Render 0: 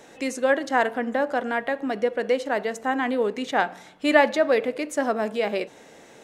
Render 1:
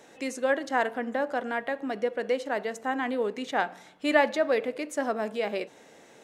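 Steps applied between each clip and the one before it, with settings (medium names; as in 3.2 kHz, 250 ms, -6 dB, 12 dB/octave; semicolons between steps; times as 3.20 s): bass shelf 69 Hz -8.5 dB; trim -4.5 dB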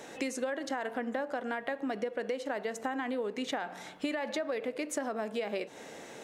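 peak limiter -19 dBFS, peak gain reduction 11 dB; compression 12:1, threshold -37 dBFS, peak gain reduction 14.5 dB; trim +6.5 dB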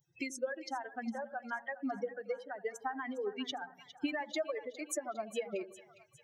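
expander on every frequency bin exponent 3; two-band feedback delay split 760 Hz, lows 83 ms, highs 407 ms, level -14.5 dB; trim +3 dB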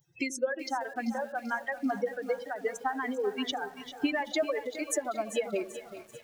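bit-crushed delay 388 ms, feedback 55%, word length 9-bit, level -13 dB; trim +6.5 dB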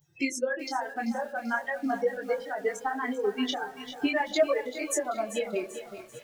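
detune thickener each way 16 cents; trim +6 dB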